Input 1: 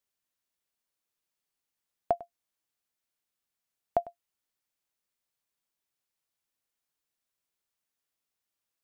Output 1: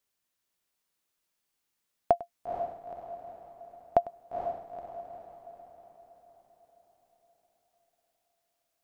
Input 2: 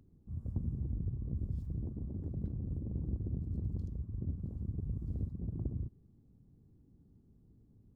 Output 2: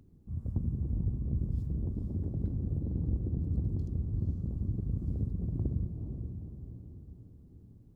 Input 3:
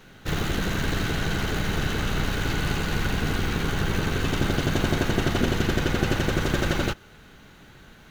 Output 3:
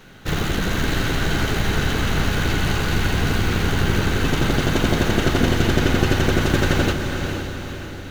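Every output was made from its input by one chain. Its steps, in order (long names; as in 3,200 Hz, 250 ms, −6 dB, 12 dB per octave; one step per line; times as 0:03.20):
feedback delay with all-pass diffusion 472 ms, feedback 50%, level −6 dB
level +4 dB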